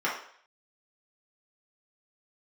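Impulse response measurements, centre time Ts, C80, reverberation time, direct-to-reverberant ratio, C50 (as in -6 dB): 35 ms, 9.0 dB, 0.60 s, -6.5 dB, 4.5 dB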